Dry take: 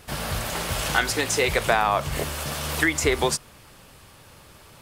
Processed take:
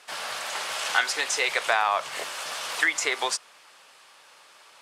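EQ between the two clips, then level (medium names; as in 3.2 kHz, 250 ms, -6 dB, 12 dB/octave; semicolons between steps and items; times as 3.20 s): band-pass 780–8000 Hz; 0.0 dB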